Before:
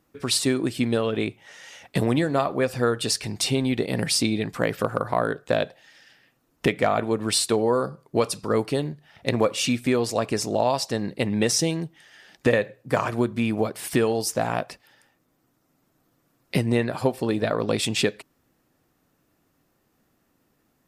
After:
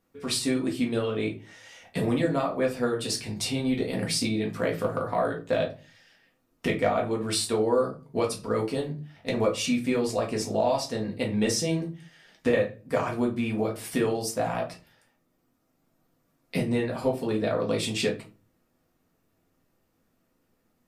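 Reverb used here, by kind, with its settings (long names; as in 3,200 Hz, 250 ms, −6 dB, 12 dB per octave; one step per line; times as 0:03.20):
rectangular room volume 130 cubic metres, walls furnished, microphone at 1.7 metres
level −8 dB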